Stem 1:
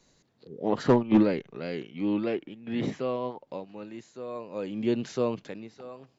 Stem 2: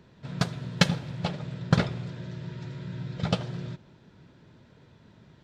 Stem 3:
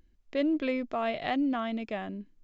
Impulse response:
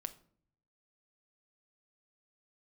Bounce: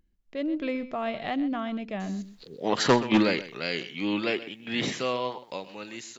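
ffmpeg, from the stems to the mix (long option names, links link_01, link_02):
-filter_complex "[0:a]tiltshelf=frequency=1300:gain=-9.5,adelay=2000,volume=0.5dB,asplit=2[link_01][link_02];[link_02]volume=-15.5dB[link_03];[2:a]equalizer=frequency=190:width_type=o:width=0.26:gain=9,deesser=0.85,volume=-7dB,asplit=2[link_04][link_05];[link_05]volume=-15dB[link_06];[link_03][link_06]amix=inputs=2:normalize=0,aecho=0:1:127:1[link_07];[link_01][link_04][link_07]amix=inputs=3:normalize=0,dynaudnorm=framelen=120:gausssize=7:maxgain=6.5dB"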